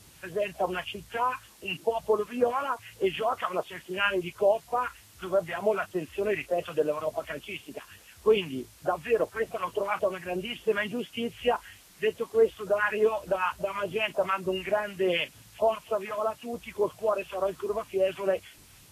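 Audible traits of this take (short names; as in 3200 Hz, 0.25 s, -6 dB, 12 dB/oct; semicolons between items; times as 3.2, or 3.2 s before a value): phasing stages 2, 3.4 Hz, lowest notch 400–2300 Hz; a quantiser's noise floor 10-bit, dither triangular; Vorbis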